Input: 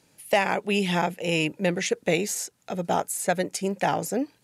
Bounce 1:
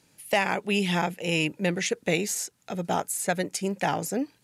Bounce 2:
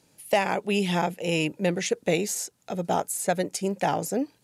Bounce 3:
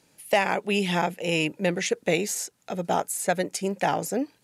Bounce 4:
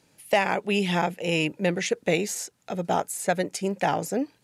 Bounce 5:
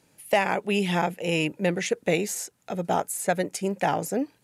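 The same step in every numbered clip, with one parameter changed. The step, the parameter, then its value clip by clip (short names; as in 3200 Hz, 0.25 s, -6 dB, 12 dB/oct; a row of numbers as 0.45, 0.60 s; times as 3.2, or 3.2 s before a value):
bell, frequency: 580, 1900, 90, 13000, 4800 Hz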